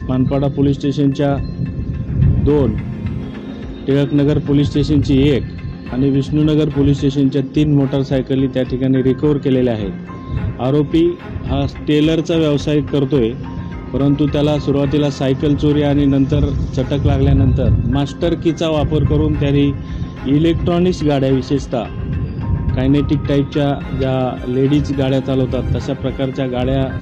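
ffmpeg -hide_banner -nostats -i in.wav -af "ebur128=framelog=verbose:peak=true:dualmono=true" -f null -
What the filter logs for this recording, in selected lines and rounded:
Integrated loudness:
  I:         -13.3 LUFS
  Threshold: -23.4 LUFS
Loudness range:
  LRA:         2.3 LU
  Threshold: -33.3 LUFS
  LRA low:   -14.5 LUFS
  LRA high:  -12.2 LUFS
True peak:
  Peak:       -3.5 dBFS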